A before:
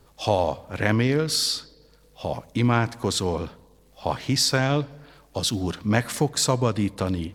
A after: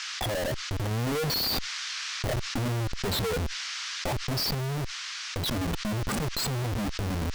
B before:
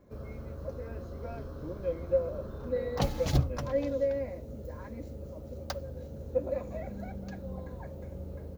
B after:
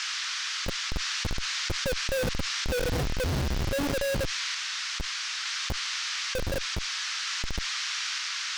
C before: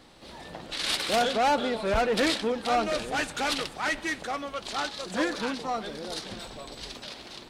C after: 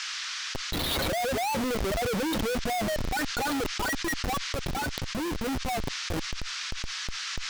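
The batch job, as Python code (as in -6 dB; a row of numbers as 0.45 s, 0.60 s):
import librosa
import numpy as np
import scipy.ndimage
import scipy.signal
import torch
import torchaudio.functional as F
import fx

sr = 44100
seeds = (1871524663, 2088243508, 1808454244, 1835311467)

p1 = fx.spec_expand(x, sr, power=3.7)
p2 = scipy.signal.sosfilt(scipy.signal.butter(12, 9600.0, 'lowpass', fs=sr, output='sos'), p1)
p3 = fx.peak_eq(p2, sr, hz=160.0, db=-5.0, octaves=0.23)
p4 = fx.notch(p3, sr, hz=590.0, q=12.0)
p5 = fx.quant_dither(p4, sr, seeds[0], bits=6, dither='triangular')
p6 = p4 + (p5 * librosa.db_to_amplitude(-7.0))
p7 = fx.schmitt(p6, sr, flips_db=-27.5)
p8 = fx.dmg_noise_band(p7, sr, seeds[1], low_hz=1200.0, high_hz=6000.0, level_db=-47.0)
p9 = fx.tremolo_random(p8, sr, seeds[2], hz=1.1, depth_pct=55)
p10 = fx.env_flatten(p9, sr, amount_pct=70)
y = p10 * 10.0 ** (-30 / 20.0) / np.sqrt(np.mean(np.square(p10)))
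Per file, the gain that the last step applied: -5.5 dB, +4.5 dB, -1.0 dB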